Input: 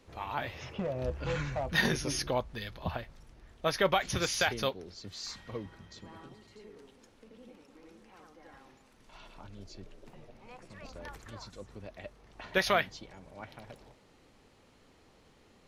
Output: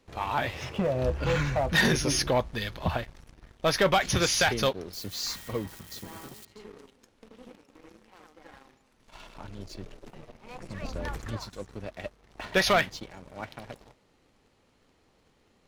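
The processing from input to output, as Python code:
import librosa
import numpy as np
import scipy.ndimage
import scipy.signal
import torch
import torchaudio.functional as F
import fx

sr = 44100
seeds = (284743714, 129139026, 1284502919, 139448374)

y = fx.crossing_spikes(x, sr, level_db=-43.5, at=(4.93, 6.45))
y = fx.low_shelf(y, sr, hz=320.0, db=7.0, at=(10.55, 11.37))
y = fx.leveller(y, sr, passes=2)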